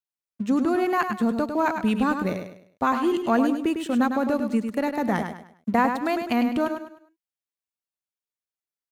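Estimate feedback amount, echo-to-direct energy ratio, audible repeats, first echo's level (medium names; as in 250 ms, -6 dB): 34%, -6.5 dB, 3, -7.0 dB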